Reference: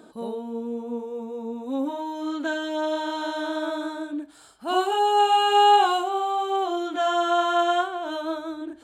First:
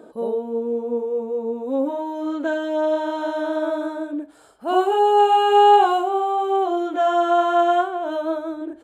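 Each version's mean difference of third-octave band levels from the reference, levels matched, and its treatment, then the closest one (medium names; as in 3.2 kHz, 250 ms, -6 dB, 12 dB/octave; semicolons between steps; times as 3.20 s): 3.5 dB: graphic EQ 500/4000/8000 Hz +10/-6/-4 dB; resampled via 32 kHz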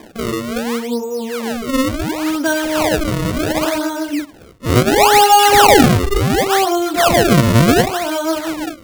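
13.5 dB: decimation with a swept rate 31×, swing 160% 0.7 Hz; loudness maximiser +11.5 dB; trim -1 dB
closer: first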